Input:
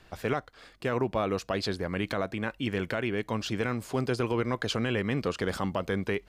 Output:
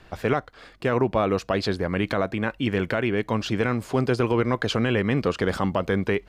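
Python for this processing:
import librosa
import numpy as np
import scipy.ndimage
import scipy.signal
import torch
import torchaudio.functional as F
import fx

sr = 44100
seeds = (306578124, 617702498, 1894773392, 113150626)

y = fx.high_shelf(x, sr, hz=4300.0, db=-7.5)
y = F.gain(torch.from_numpy(y), 6.5).numpy()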